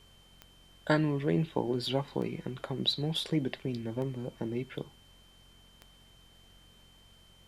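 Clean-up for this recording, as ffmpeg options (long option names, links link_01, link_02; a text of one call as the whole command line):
ffmpeg -i in.wav -af "adeclick=threshold=4,bandreject=frequency=45.2:width_type=h:width=4,bandreject=frequency=90.4:width_type=h:width=4,bandreject=frequency=135.6:width_type=h:width=4,bandreject=frequency=180.8:width_type=h:width=4,bandreject=frequency=226:width_type=h:width=4,bandreject=frequency=3100:width=30,agate=range=-21dB:threshold=-51dB" out.wav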